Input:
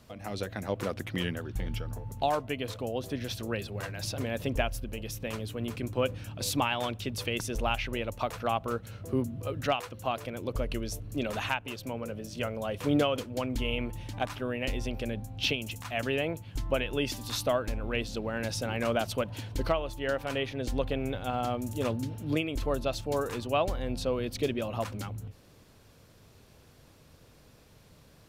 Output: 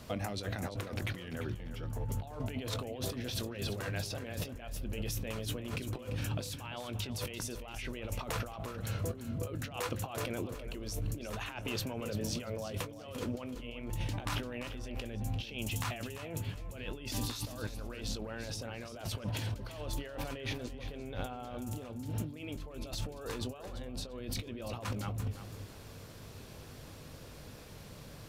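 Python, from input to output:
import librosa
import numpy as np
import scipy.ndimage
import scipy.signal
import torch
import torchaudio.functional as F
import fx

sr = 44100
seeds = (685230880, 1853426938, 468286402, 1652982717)

y = fx.over_compress(x, sr, threshold_db=-41.0, ratio=-1.0)
y = fx.doubler(y, sr, ms=20.0, db=-13.0)
y = fx.echo_feedback(y, sr, ms=343, feedback_pct=26, wet_db=-11.5)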